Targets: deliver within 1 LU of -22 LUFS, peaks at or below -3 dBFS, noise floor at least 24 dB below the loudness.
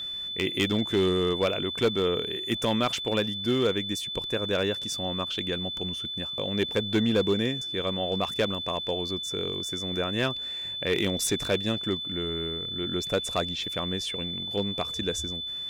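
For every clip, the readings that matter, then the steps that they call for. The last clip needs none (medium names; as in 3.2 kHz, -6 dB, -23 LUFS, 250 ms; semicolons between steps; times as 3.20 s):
clipped samples 0.5%; clipping level -17.5 dBFS; steady tone 3.5 kHz; tone level -32 dBFS; loudness -27.5 LUFS; peak level -17.5 dBFS; loudness target -22.0 LUFS
-> clip repair -17.5 dBFS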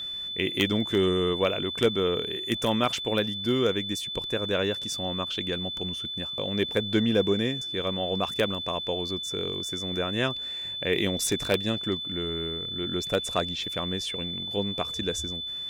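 clipped samples 0.0%; steady tone 3.5 kHz; tone level -32 dBFS
-> band-stop 3.5 kHz, Q 30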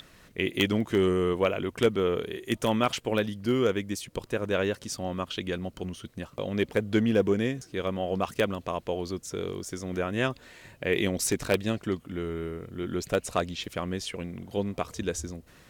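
steady tone not found; loudness -29.5 LUFS; peak level -8.5 dBFS; loudness target -22.0 LUFS
-> trim +7.5 dB; peak limiter -3 dBFS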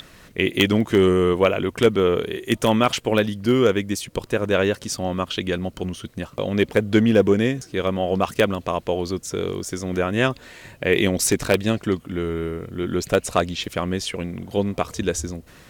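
loudness -22.0 LUFS; peak level -3.0 dBFS; noise floor -49 dBFS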